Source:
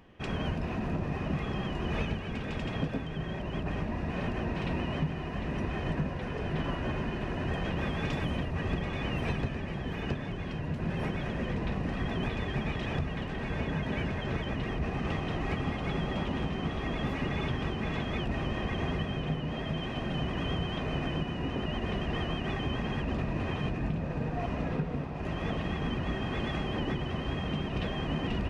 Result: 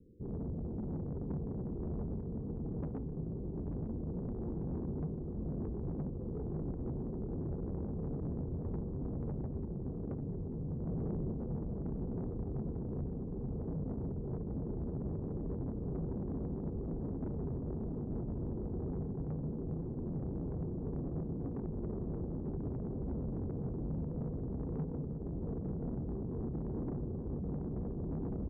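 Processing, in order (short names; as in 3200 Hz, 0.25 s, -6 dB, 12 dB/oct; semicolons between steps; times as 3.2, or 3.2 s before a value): steep low-pass 500 Hz 96 dB/oct; soft clip -32 dBFS, distortion -12 dB; on a send: feedback echo 0.891 s, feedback 59%, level -9.5 dB; 10.87–11.32 on the sum: fast leveller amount 100%; gain -2 dB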